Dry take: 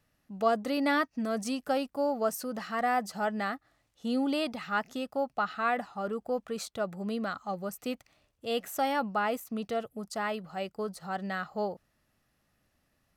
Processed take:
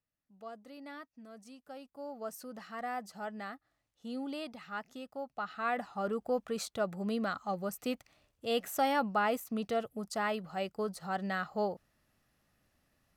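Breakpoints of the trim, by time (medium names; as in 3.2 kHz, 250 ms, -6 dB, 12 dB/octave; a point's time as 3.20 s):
1.63 s -20 dB
2.38 s -10 dB
5.26 s -10 dB
5.99 s -0.5 dB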